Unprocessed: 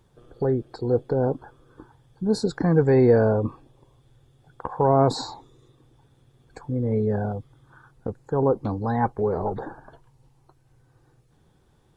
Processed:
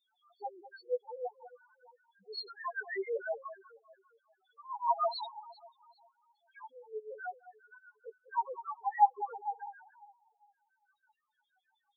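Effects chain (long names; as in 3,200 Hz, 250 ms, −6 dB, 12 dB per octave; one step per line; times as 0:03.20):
auto-filter high-pass saw down 6.3 Hz 800–4,300 Hz
delay that swaps between a low-pass and a high-pass 200 ms, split 1,200 Hz, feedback 54%, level −13.5 dB
spectral peaks only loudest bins 1
level +5.5 dB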